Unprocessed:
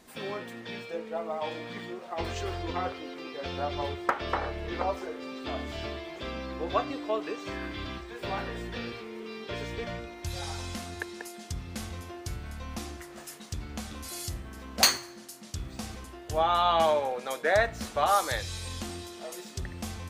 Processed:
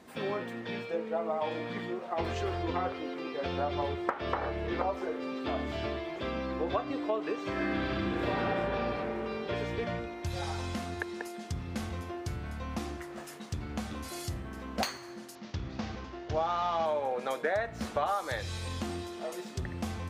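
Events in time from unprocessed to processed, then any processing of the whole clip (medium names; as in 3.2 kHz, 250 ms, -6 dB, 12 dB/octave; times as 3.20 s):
7.52–8.55 s: reverb throw, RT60 2.7 s, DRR -6.5 dB
15.35–16.86 s: CVSD coder 32 kbps
whole clip: compression 6:1, threshold -30 dBFS; high-pass 73 Hz; treble shelf 3.4 kHz -11 dB; trim +3.5 dB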